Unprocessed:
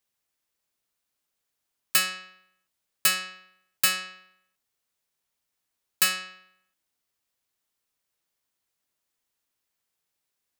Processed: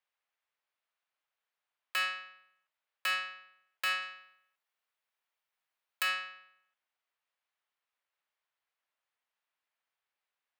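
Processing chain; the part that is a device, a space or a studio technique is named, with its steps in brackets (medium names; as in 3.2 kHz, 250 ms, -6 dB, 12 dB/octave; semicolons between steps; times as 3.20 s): DJ mixer with the lows and highs turned down (three-band isolator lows -22 dB, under 550 Hz, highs -19 dB, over 3.3 kHz; peak limiter -20 dBFS, peak gain reduction 6.5 dB); 4.02–6.03 s: treble shelf 7.7 kHz +8.5 dB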